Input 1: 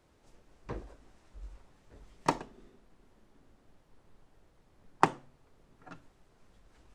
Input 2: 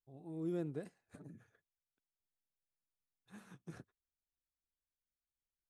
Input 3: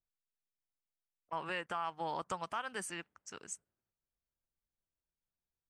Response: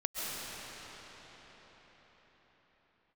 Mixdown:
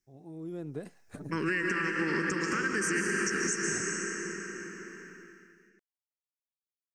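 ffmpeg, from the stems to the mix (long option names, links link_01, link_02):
-filter_complex "[1:a]volume=2.5dB[link_01];[2:a]firequalizer=gain_entry='entry(130,0);entry(190,9);entry(390,10);entry(690,-29);entry(1000,-13);entry(1600,9);entry(2300,7);entry(3500,-17);entry(5400,14);entry(10000,-3)':delay=0.05:min_phase=1,volume=0.5dB,asplit=2[link_02][link_03];[link_03]volume=-5dB[link_04];[link_01][link_02]amix=inputs=2:normalize=0,acompressor=threshold=-43dB:ratio=2.5,volume=0dB[link_05];[3:a]atrim=start_sample=2205[link_06];[link_04][link_06]afir=irnorm=-1:irlink=0[link_07];[link_05][link_07]amix=inputs=2:normalize=0,dynaudnorm=framelen=150:gausssize=9:maxgain=9.5dB,alimiter=limit=-20.5dB:level=0:latency=1:release=132"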